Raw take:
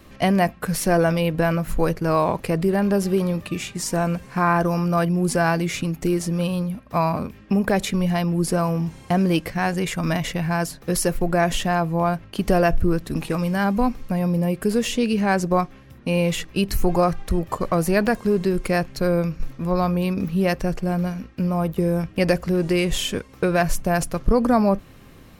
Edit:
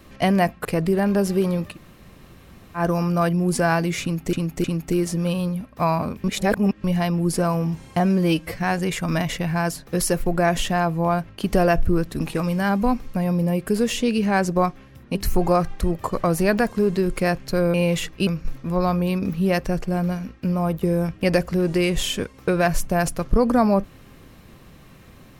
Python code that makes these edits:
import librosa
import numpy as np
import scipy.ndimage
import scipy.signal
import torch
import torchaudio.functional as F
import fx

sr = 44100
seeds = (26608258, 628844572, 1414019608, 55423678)

y = fx.edit(x, sr, fx.cut(start_s=0.65, length_s=1.76),
    fx.room_tone_fill(start_s=3.49, length_s=1.06, crossfade_s=0.1),
    fx.repeat(start_s=5.78, length_s=0.31, count=3),
    fx.reverse_span(start_s=7.38, length_s=0.6),
    fx.stretch_span(start_s=9.14, length_s=0.38, factor=1.5),
    fx.move(start_s=16.1, length_s=0.53, to_s=19.22), tone=tone)